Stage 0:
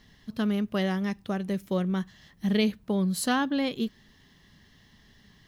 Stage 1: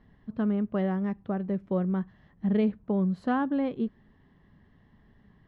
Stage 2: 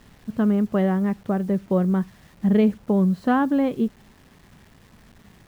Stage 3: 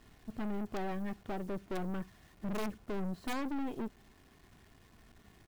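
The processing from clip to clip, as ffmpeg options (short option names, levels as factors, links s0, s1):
-af "lowpass=1200"
-af "acrusher=bits=9:mix=0:aa=0.000001,volume=2.24"
-af "aeval=exprs='(mod(3.16*val(0)+1,2)-1)/3.16':c=same,aecho=1:1:2.8:0.37,aeval=exprs='(tanh(28.2*val(0)+0.65)-tanh(0.65))/28.2':c=same,volume=0.501"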